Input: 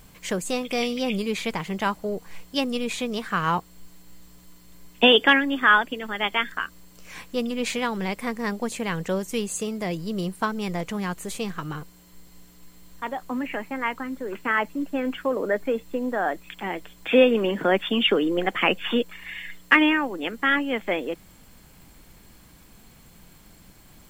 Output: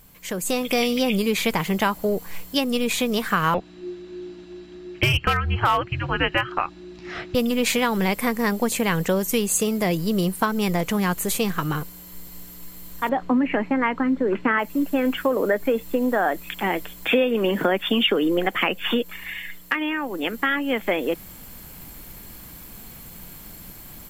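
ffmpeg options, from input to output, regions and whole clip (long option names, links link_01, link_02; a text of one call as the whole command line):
ffmpeg -i in.wav -filter_complex "[0:a]asettb=1/sr,asplit=3[link_01][link_02][link_03];[link_01]atrim=end=3.544[link_04];[link_02]atrim=start=3.54:end=7.35,asetpts=PTS-STARTPTS,afade=type=in:duration=0.004:curve=qsin,afade=type=out:start_time=3.806:duration=0.004:curve=qsin,lowpass=frequency=4800:width=0.5412,lowpass=frequency=4800:width=1.3066,afreqshift=-360,asoftclip=type=hard:threshold=-10.5dB[link_05];[link_03]atrim=start=7.346[link_06];[link_04][link_05]acrossfade=duration=0.004:curve1=hsin:curve2=qsin[link_07];[link_07][link_06]acrossfade=duration=0.004:curve1=qsin:curve2=hsin,asettb=1/sr,asplit=3[link_08][link_09][link_10];[link_08]atrim=end=13.094[link_11];[link_09]atrim=start=13.09:end=14.59,asetpts=PTS-STARTPTS,afade=type=in:duration=0.004:curve=qsin,afade=type=out:start_time=1.496:duration=0.004:curve=qsin,lowpass=3200,equalizer=frequency=230:width=0.53:gain=6.5[link_12];[link_10]atrim=start=14.586[link_13];[link_11][link_12]acrossfade=duration=0.004:curve1=hsin:curve2=qsin[link_14];[link_14][link_13]acrossfade=duration=0.004:curve1=qsin:curve2=hsin,acompressor=threshold=-24dB:ratio=5,equalizer=frequency=13000:width_type=o:width=0.39:gain=14,dynaudnorm=framelen=290:gausssize=3:maxgain=11dB,volume=-3.5dB" out.wav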